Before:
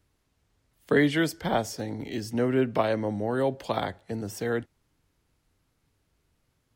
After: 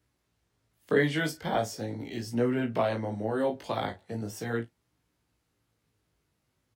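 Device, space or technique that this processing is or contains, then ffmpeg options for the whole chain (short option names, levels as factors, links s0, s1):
double-tracked vocal: -filter_complex "[0:a]asplit=2[s0][s1];[s1]adelay=35,volume=0.299[s2];[s0][s2]amix=inputs=2:normalize=0,flanger=delay=16.5:depth=3:speed=0.39,highpass=68"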